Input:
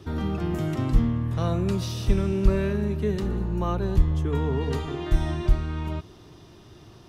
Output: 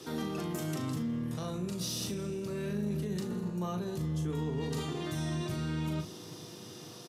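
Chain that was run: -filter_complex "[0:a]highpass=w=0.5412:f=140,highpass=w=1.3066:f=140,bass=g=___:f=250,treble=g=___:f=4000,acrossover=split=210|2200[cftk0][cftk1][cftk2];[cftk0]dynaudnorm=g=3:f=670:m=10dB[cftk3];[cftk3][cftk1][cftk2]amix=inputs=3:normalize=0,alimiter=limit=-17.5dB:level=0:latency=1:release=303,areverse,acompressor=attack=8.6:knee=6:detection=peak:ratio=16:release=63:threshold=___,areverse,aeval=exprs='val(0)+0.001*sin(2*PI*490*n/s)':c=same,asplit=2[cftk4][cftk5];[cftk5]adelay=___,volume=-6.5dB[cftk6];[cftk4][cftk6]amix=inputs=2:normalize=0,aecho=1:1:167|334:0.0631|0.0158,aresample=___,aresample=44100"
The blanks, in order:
-4, 13, -34dB, 39, 32000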